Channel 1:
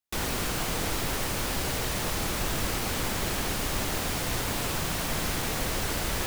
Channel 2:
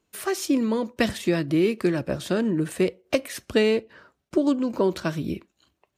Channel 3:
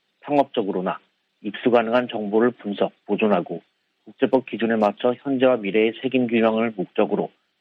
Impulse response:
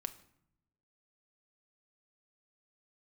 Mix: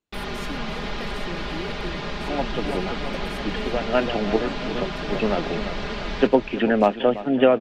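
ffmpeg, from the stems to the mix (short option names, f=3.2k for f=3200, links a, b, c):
-filter_complex "[0:a]lowpass=f=4.2k:w=0.5412,lowpass=f=4.2k:w=1.3066,aecho=1:1:4.9:0.95,volume=-2.5dB,asplit=2[a][b];[b]volume=-10dB[c];[1:a]volume=-14dB,asplit=3[d][e][f];[e]volume=-12dB[g];[2:a]adelay=2000,volume=1dB,asplit=2[h][i];[i]volume=-15.5dB[j];[f]apad=whole_len=423441[k];[h][k]sidechaincompress=threshold=-43dB:ratio=8:attack=16:release=340[l];[c][g][j]amix=inputs=3:normalize=0,aecho=0:1:337|674|1011|1348|1685|2022|2359|2696:1|0.56|0.314|0.176|0.0983|0.0551|0.0308|0.0173[m];[a][d][l][m]amix=inputs=4:normalize=0"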